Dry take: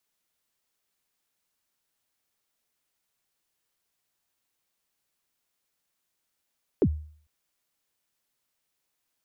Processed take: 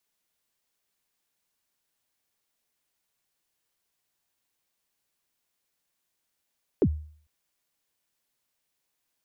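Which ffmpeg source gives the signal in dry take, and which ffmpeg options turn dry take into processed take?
-f lavfi -i "aevalsrc='0.178*pow(10,-3*t/0.51)*sin(2*PI*(480*0.062/log(76/480)*(exp(log(76/480)*min(t,0.062)/0.062)-1)+76*max(t-0.062,0)))':d=0.45:s=44100"
-af "bandreject=f=1.3k:w=22"

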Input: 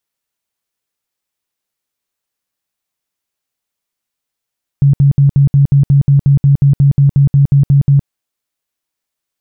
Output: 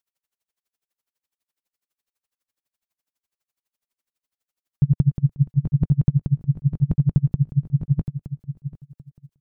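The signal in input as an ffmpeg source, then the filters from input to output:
-f lavfi -i "aevalsrc='0.596*sin(2*PI*140*mod(t,0.18))*lt(mod(t,0.18),16/140)':d=3.24:s=44100"
-filter_complex "[0:a]equalizer=f=130:w=2:g=-4,asplit=2[a][b];[b]aecho=0:1:739|1478:0.282|0.0479[c];[a][c]amix=inputs=2:normalize=0,aeval=exprs='val(0)*pow(10,-32*(0.5-0.5*cos(2*PI*12*n/s))/20)':c=same"

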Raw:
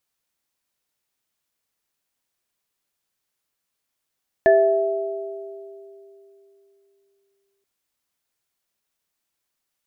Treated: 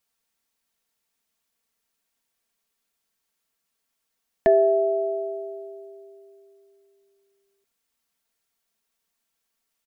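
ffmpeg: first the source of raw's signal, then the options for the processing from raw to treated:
-f lavfi -i "aevalsrc='0.15*pow(10,-3*t/3.38)*sin(2*PI*395*t)+0.299*pow(10,-3*t/2.17)*sin(2*PI*659*t)+0.106*pow(10,-3*t/0.42)*sin(2*PI*1740*t)':d=3.18:s=44100"
-filter_complex "[0:a]aecho=1:1:4.4:0.54,acrossover=split=600[a][b];[b]acompressor=threshold=-29dB:ratio=6[c];[a][c]amix=inputs=2:normalize=0"

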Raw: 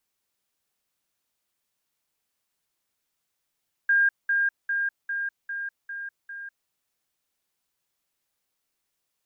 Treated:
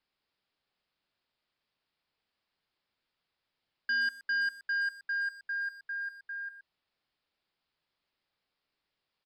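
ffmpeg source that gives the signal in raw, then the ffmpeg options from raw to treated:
-f lavfi -i "aevalsrc='pow(10,(-17-3*floor(t/0.4))/20)*sin(2*PI*1610*t)*clip(min(mod(t,0.4),0.2-mod(t,0.4))/0.005,0,1)':d=2.8:s=44100"
-filter_complex "[0:a]aresample=11025,asoftclip=type=tanh:threshold=-27.5dB,aresample=44100,asplit=2[a][b];[b]adelay=120,highpass=300,lowpass=3.4k,asoftclip=type=hard:threshold=-36dB,volume=-12dB[c];[a][c]amix=inputs=2:normalize=0"

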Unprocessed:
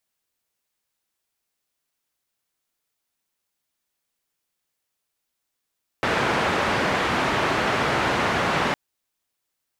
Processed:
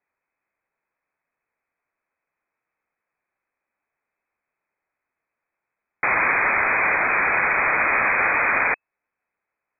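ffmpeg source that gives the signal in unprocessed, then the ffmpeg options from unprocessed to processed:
-f lavfi -i "anoisesrc=c=white:d=2.71:r=44100:seed=1,highpass=f=82,lowpass=f=1600,volume=-6.5dB"
-filter_complex "[0:a]asplit=2[a][b];[b]alimiter=limit=-20.5dB:level=0:latency=1:release=228,volume=-0.5dB[c];[a][c]amix=inputs=2:normalize=0,lowpass=f=2.2k:t=q:w=0.5098,lowpass=f=2.2k:t=q:w=0.6013,lowpass=f=2.2k:t=q:w=0.9,lowpass=f=2.2k:t=q:w=2.563,afreqshift=-2600"

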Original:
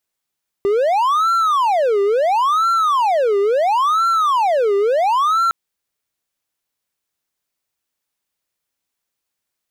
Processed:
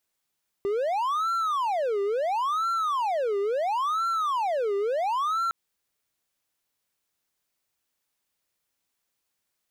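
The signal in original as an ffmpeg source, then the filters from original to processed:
-f lavfi -i "aevalsrc='0.282*(1-4*abs(mod((878.5*t-481.5/(2*PI*0.73)*sin(2*PI*0.73*t))+0.25,1)-0.5))':d=4.86:s=44100"
-af "alimiter=limit=-21.5dB:level=0:latency=1:release=73"

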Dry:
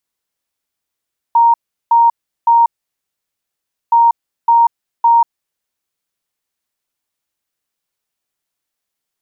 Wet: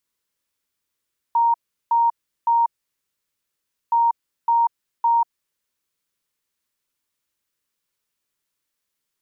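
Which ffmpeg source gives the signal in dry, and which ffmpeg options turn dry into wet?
-f lavfi -i "aevalsrc='0.501*sin(2*PI*932*t)*clip(min(mod(mod(t,2.57),0.56),0.19-mod(mod(t,2.57),0.56))/0.005,0,1)*lt(mod(t,2.57),1.68)':d=5.14:s=44100"
-af "alimiter=limit=-12.5dB:level=0:latency=1:release=18,equalizer=f=730:w=7.3:g=-15"

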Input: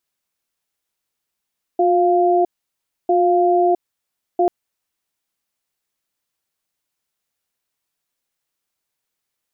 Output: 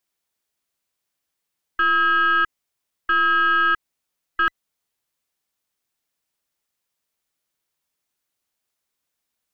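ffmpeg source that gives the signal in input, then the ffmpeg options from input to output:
-f lavfi -i "aevalsrc='0.178*(sin(2*PI*358*t)+sin(2*PI*698*t))*clip(min(mod(t,1.3),0.66-mod(t,1.3))/0.005,0,1)':d=2.69:s=44100"
-af "afftfilt=real='real(if(between(b,1,1012),(2*floor((b-1)/92)+1)*92-b,b),0)':imag='imag(if(between(b,1,1012),(2*floor((b-1)/92)+1)*92-b,b),0)*if(between(b,1,1012),-1,1)':win_size=2048:overlap=0.75,alimiter=limit=-12dB:level=0:latency=1:release=62,aeval=exprs='0.251*(cos(1*acos(clip(val(0)/0.251,-1,1)))-cos(1*PI/2))+0.0447*(cos(2*acos(clip(val(0)/0.251,-1,1)))-cos(2*PI/2))+0.00447*(cos(3*acos(clip(val(0)/0.251,-1,1)))-cos(3*PI/2))':c=same"

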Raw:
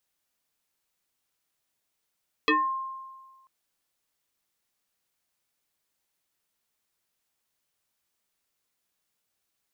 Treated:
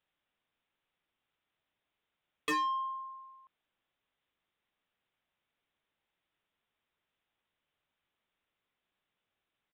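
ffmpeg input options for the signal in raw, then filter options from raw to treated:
-f lavfi -i "aevalsrc='0.133*pow(10,-3*t/1.48)*sin(2*PI*1060*t+3.8*pow(10,-3*t/0.28)*sin(2*PI*0.71*1060*t))':d=0.99:s=44100"
-af "aresample=8000,aresample=44100,asoftclip=type=tanh:threshold=-29dB"

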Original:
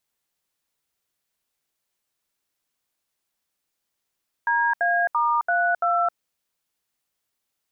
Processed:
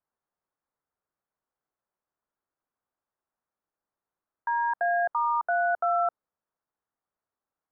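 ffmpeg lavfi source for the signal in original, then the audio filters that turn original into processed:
-f lavfi -i "aevalsrc='0.0891*clip(min(mod(t,0.338),0.265-mod(t,0.338))/0.002,0,1)*(eq(floor(t/0.338),0)*(sin(2*PI*941*mod(t,0.338))+sin(2*PI*1633*mod(t,0.338)))+eq(floor(t/0.338),1)*(sin(2*PI*697*mod(t,0.338))+sin(2*PI*1633*mod(t,0.338)))+eq(floor(t/0.338),2)*(sin(2*PI*941*mod(t,0.338))+sin(2*PI*1209*mod(t,0.338)))+eq(floor(t/0.338),3)*(sin(2*PI*697*mod(t,0.338))+sin(2*PI*1477*mod(t,0.338)))+eq(floor(t/0.338),4)*(sin(2*PI*697*mod(t,0.338))+sin(2*PI*1336*mod(t,0.338))))':d=1.69:s=44100"
-filter_complex "[0:a]lowpass=f=1.4k:w=0.5412,lowpass=f=1.4k:w=1.3066,lowshelf=f=430:g=-6,acrossover=split=690|860[a][b][c];[c]alimiter=level_in=3dB:limit=-24dB:level=0:latency=1,volume=-3dB[d];[a][b][d]amix=inputs=3:normalize=0"

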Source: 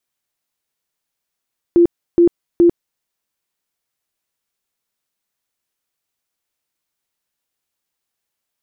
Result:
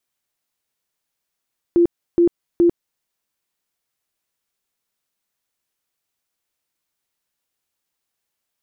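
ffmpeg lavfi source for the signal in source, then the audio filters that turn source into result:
-f lavfi -i "aevalsrc='0.473*sin(2*PI*344*mod(t,0.42))*lt(mod(t,0.42),33/344)':d=1.26:s=44100"
-af "alimiter=limit=-10dB:level=0:latency=1:release=175"

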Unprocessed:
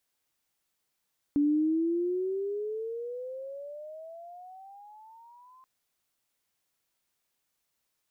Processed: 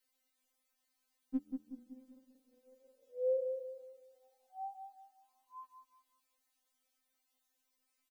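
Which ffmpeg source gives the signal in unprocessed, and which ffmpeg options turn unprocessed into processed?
-f lavfi -i "aevalsrc='pow(10,(-21-32*t/4.28)/20)*sin(2*PI*286*4.28/(22.5*log(2)/12)*(exp(22.5*log(2)/12*t/4.28)-1))':d=4.28:s=44100"
-filter_complex "[0:a]asplit=2[a][b];[b]adelay=186,lowpass=f=920:p=1,volume=-5dB,asplit=2[c][d];[d]adelay=186,lowpass=f=920:p=1,volume=0.45,asplit=2[e][f];[f]adelay=186,lowpass=f=920:p=1,volume=0.45,asplit=2[g][h];[h]adelay=186,lowpass=f=920:p=1,volume=0.45,asplit=2[i][j];[j]adelay=186,lowpass=f=920:p=1,volume=0.45,asplit=2[k][l];[l]adelay=186,lowpass=f=920:p=1,volume=0.45[m];[a][c][e][g][i][k][m]amix=inputs=7:normalize=0,afftfilt=real='re*3.46*eq(mod(b,12),0)':imag='im*3.46*eq(mod(b,12),0)':win_size=2048:overlap=0.75"

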